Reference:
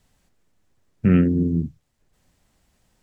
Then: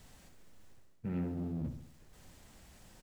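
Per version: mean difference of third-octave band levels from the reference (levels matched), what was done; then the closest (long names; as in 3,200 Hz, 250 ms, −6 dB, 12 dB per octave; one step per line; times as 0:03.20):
8.0 dB: mu-law and A-law mismatch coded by mu
reversed playback
downward compressor 4 to 1, threshold −34 dBFS, peak gain reduction 18 dB
reversed playback
soft clipping −29.5 dBFS, distortion −17 dB
repeating echo 67 ms, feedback 52%, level −9.5 dB
level −1.5 dB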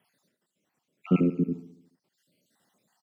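5.5 dB: time-frequency cells dropped at random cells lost 60%
high-pass filter 160 Hz 24 dB per octave
low-shelf EQ 350 Hz −3 dB
repeating echo 71 ms, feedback 57%, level −15 dB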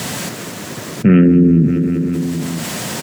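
4.0 dB: high-pass filter 130 Hz 24 dB per octave
notch filter 810 Hz, Q 12
on a send: repeating echo 195 ms, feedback 55%, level −19 dB
on the sum: envelope flattener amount 70%
level +6.5 dB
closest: third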